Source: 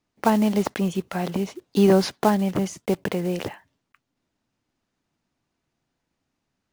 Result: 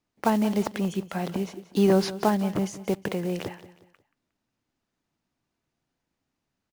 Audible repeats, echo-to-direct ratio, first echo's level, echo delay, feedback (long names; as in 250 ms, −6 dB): 3, −15.5 dB, −16.0 dB, 180 ms, 37%